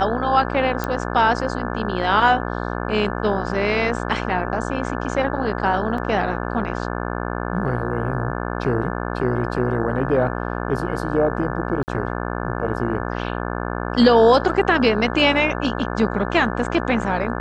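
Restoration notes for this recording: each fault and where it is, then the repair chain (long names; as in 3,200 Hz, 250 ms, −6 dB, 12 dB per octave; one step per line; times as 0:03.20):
mains buzz 60 Hz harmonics 29 −26 dBFS
0:00.84: click −10 dBFS
0:05.98: drop-out 2.7 ms
0:11.83–0:11.88: drop-out 49 ms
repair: click removal
hum removal 60 Hz, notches 29
repair the gap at 0:05.98, 2.7 ms
repair the gap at 0:11.83, 49 ms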